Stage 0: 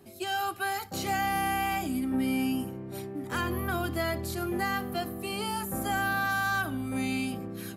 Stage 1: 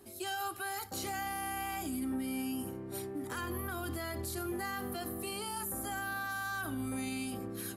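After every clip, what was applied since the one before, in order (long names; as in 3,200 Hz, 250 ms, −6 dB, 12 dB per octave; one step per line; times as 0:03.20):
graphic EQ with 15 bands 160 Hz −11 dB, 630 Hz −4 dB, 2,500 Hz −4 dB, 10,000 Hz +6 dB
brickwall limiter −29.5 dBFS, peak gain reduction 9.5 dB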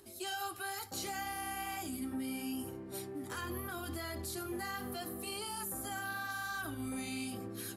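parametric band 4,900 Hz +4 dB 1.9 octaves
upward compression, threshold −60 dBFS
flanger 0.74 Hz, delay 1.9 ms, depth 8.6 ms, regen −49%
level +1 dB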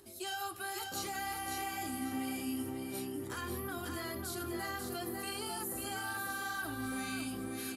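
repeating echo 544 ms, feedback 28%, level −5 dB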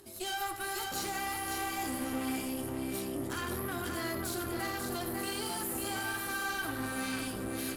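tube saturation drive 39 dB, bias 0.8
convolution reverb RT60 0.65 s, pre-delay 72 ms, DRR 8.5 dB
level +8 dB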